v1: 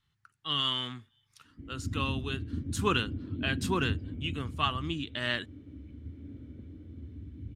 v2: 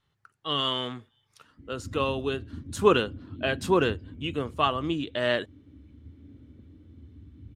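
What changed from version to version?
speech: add bell 530 Hz +15 dB 1.5 oct; background -4.5 dB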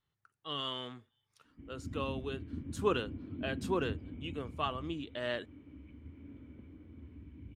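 speech -10.5 dB; background: add fifteen-band EQ 100 Hz -6 dB, 1000 Hz +12 dB, 2500 Hz +9 dB

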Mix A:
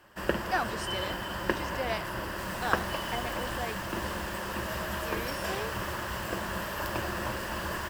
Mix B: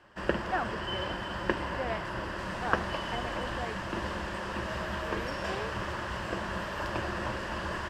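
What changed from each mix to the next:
speech: add air absorption 380 m; master: add air absorption 84 m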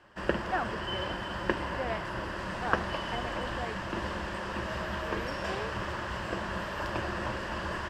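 second sound: add high shelf 10000 Hz -9.5 dB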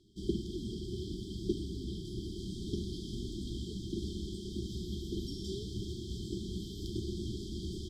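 master: add brick-wall FIR band-stop 420–3100 Hz

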